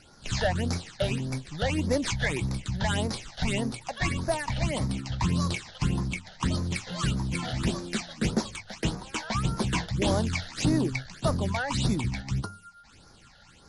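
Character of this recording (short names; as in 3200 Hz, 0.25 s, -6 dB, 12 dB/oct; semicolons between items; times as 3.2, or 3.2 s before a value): aliases and images of a low sample rate 11000 Hz, jitter 20%; phasing stages 8, 1.7 Hz, lowest notch 310–2900 Hz; MP3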